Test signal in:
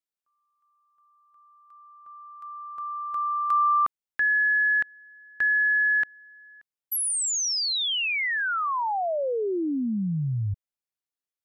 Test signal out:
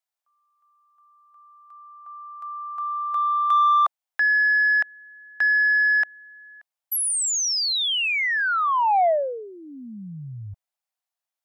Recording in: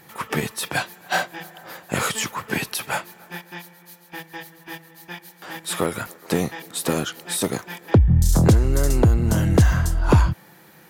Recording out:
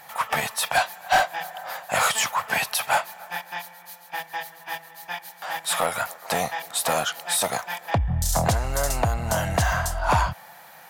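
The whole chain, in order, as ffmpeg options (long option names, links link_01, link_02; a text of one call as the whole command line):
ffmpeg -i in.wav -af "lowshelf=frequency=500:width_type=q:width=3:gain=-11,asoftclip=type=tanh:threshold=-15dB,volume=3dB" out.wav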